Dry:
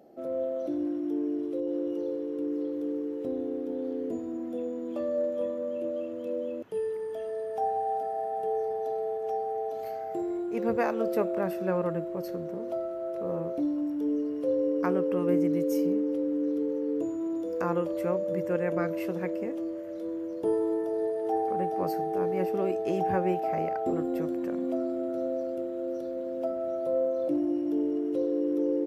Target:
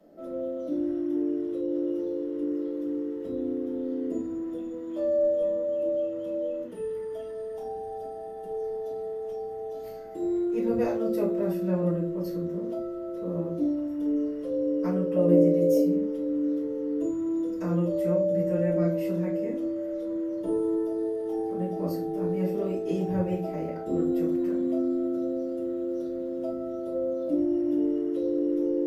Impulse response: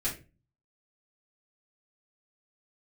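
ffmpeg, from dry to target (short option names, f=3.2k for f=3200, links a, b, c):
-filter_complex "[0:a]asettb=1/sr,asplit=3[a][b][c];[a]atrim=end=15.164[d];[b]atrim=start=15.16:end=15.77,asetpts=PTS-STARTPTS,afade=t=in:d=0.004:c=qsin,afade=t=out:st=0.606:d=0.004:c=qsin,equalizer=f=600:w=1.9:g=14.5[e];[c]atrim=start=15.766[f];[d][e]acrossfade=d=0.004:c1=hsin:c2=qsin[g];[g][f]acrossfade=d=0.004:c1=qsin:c2=hsin,acrossover=split=380|810|2600[h][i][j][k];[j]acompressor=threshold=-54dB:ratio=6[l];[h][i][l][k]amix=inputs=4:normalize=0[m];[1:a]atrim=start_sample=2205,asetrate=35280,aresample=44100[n];[m][n]afir=irnorm=-1:irlink=0,volume=-5.5dB"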